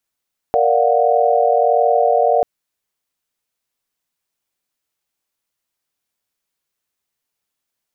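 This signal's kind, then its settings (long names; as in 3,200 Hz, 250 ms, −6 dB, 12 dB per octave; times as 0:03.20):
held notes A#4/D5/F5/F#5 sine, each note −17 dBFS 1.89 s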